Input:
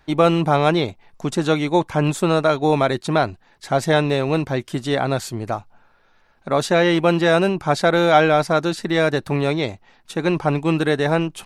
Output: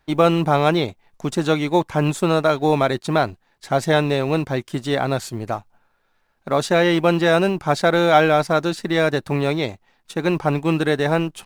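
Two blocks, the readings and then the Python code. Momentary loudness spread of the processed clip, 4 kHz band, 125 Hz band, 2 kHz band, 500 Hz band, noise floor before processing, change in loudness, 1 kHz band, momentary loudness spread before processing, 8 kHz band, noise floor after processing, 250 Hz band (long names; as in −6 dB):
9 LU, −0.5 dB, −0.5 dB, 0.0 dB, −0.5 dB, −57 dBFS, −0.5 dB, 0.0 dB, 9 LU, −1.0 dB, −65 dBFS, −0.5 dB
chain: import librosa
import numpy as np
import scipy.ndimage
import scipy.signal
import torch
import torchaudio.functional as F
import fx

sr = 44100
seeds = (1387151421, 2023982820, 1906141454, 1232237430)

y = fx.law_mismatch(x, sr, coded='A')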